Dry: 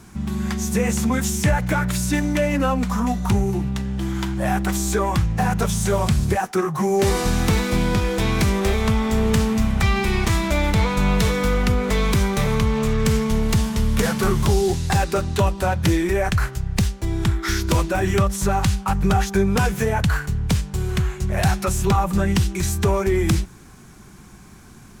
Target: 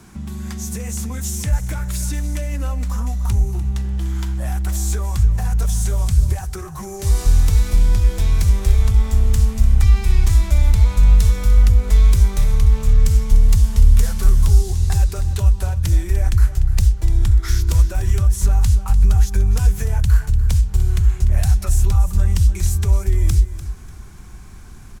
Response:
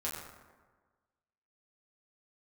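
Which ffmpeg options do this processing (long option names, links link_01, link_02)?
-filter_complex "[0:a]asubboost=boost=5:cutoff=78,acrossover=split=110|5100[link_01][link_02][link_03];[link_02]acompressor=threshold=-32dB:ratio=6[link_04];[link_01][link_04][link_03]amix=inputs=3:normalize=0,aecho=1:1:296|592|888:0.2|0.0539|0.0145"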